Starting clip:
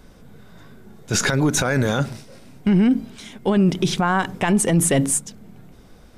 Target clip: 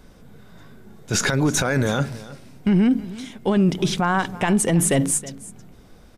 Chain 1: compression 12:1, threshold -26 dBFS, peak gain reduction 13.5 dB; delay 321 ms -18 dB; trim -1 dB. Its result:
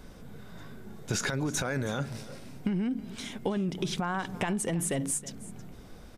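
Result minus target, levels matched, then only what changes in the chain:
compression: peak gain reduction +13.5 dB
remove: compression 12:1, threshold -26 dBFS, peak gain reduction 13.5 dB

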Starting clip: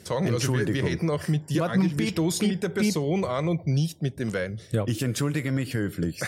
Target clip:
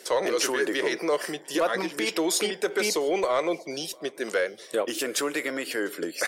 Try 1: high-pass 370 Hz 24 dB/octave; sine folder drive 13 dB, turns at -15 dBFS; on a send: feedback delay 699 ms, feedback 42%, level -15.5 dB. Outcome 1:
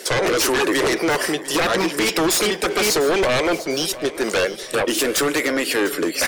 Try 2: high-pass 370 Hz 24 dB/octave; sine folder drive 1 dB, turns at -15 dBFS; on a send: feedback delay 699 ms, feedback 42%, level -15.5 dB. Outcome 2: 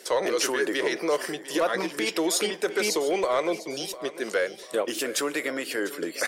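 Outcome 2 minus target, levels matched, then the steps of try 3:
echo-to-direct +10.5 dB
high-pass 370 Hz 24 dB/octave; sine folder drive 1 dB, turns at -15 dBFS; on a send: feedback delay 699 ms, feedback 42%, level -26 dB

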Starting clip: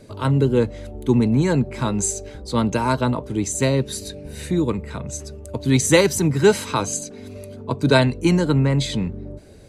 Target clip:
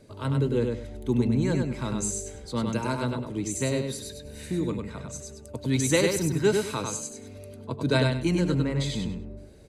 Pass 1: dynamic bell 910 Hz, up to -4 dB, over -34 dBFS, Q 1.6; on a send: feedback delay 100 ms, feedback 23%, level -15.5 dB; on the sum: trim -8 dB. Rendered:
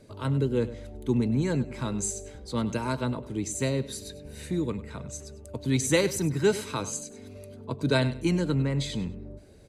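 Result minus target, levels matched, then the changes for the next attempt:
echo-to-direct -11.5 dB
change: feedback delay 100 ms, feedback 23%, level -4 dB

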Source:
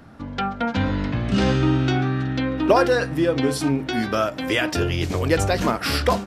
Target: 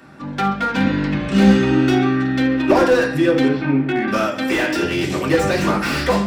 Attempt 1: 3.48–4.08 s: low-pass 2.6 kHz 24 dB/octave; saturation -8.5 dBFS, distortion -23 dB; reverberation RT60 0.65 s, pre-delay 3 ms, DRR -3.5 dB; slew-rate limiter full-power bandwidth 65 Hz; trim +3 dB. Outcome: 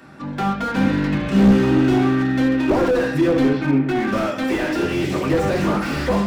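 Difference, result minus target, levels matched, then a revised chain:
slew-rate limiter: distortion +8 dB
3.48–4.08 s: low-pass 2.6 kHz 24 dB/octave; saturation -8.5 dBFS, distortion -23 dB; reverberation RT60 0.65 s, pre-delay 3 ms, DRR -3.5 dB; slew-rate limiter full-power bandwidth 150.5 Hz; trim +3 dB

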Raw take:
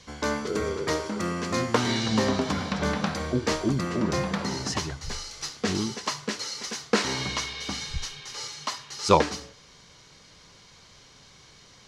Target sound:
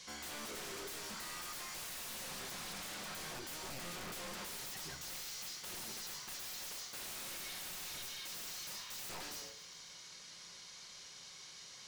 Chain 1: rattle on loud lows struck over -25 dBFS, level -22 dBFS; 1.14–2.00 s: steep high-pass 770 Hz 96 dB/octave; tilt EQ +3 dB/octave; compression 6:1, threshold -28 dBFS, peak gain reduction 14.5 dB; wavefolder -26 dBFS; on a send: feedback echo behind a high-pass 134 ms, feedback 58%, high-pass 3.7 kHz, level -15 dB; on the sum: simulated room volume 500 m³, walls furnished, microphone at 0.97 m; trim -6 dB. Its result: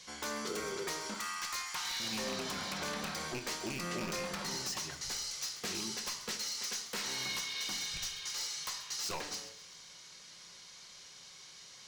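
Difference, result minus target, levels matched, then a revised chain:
wavefolder: distortion -18 dB
rattle on loud lows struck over -25 dBFS, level -22 dBFS; 1.14–2.00 s: steep high-pass 770 Hz 96 dB/octave; tilt EQ +3 dB/octave; compression 6:1, threshold -28 dBFS, peak gain reduction 14.5 dB; wavefolder -35.5 dBFS; on a send: feedback echo behind a high-pass 134 ms, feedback 58%, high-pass 3.7 kHz, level -15 dB; on the sum: simulated room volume 500 m³, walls furnished, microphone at 0.97 m; trim -6 dB

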